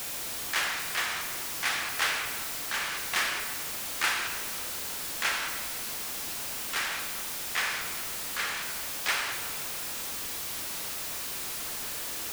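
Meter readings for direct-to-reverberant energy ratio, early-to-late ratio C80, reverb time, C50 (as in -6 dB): 4.5 dB, 7.0 dB, 1.7 s, 5.5 dB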